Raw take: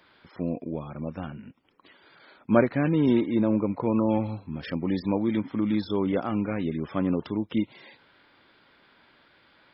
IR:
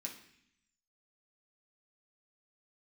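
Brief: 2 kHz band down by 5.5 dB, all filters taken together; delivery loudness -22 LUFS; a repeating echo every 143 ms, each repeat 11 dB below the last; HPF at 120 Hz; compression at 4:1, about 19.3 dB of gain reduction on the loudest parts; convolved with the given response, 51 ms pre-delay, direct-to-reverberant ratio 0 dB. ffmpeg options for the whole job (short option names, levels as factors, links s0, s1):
-filter_complex "[0:a]highpass=120,equalizer=f=2000:t=o:g=-7.5,acompressor=threshold=0.0112:ratio=4,aecho=1:1:143|286|429:0.282|0.0789|0.0221,asplit=2[s0][s1];[1:a]atrim=start_sample=2205,adelay=51[s2];[s1][s2]afir=irnorm=-1:irlink=0,volume=1.33[s3];[s0][s3]amix=inputs=2:normalize=0,volume=5.62"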